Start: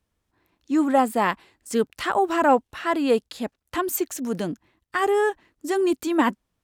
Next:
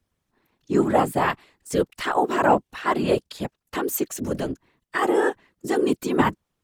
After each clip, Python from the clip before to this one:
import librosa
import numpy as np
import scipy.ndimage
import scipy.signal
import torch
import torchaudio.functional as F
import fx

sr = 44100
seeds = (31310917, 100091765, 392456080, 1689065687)

y = fx.whisperise(x, sr, seeds[0])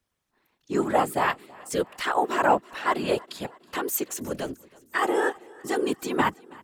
y = fx.low_shelf(x, sr, hz=400.0, db=-9.0)
y = fx.echo_feedback(y, sr, ms=324, feedback_pct=60, wet_db=-24.0)